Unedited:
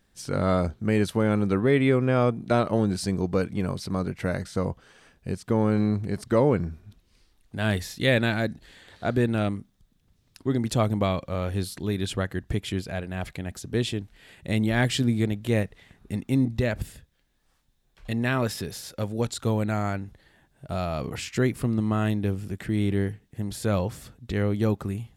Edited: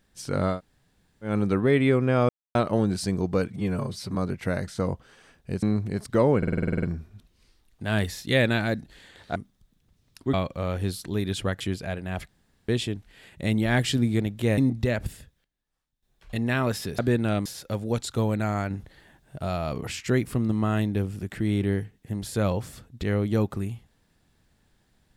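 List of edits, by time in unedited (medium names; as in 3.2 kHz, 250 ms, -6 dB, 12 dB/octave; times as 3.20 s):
0.53–1.29 s: room tone, crossfade 0.16 s
2.29–2.55 s: mute
3.48–3.93 s: stretch 1.5×
5.40–5.80 s: delete
6.55 s: stutter 0.05 s, 10 plays
9.08–9.55 s: move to 18.74 s
10.53–11.06 s: delete
12.33–12.66 s: delete
13.34–13.74 s: room tone
15.63–16.33 s: delete
16.83–18.15 s: dip -14.5 dB, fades 0.37 s logarithmic
19.99–20.67 s: gain +4.5 dB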